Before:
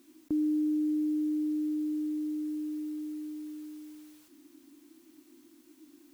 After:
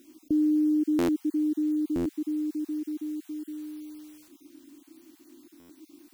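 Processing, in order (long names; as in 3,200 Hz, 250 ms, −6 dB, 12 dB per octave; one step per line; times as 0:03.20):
time-frequency cells dropped at random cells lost 22%
buffer that repeats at 0:00.98/0:01.95/0:05.59, samples 512, times 8
level +5 dB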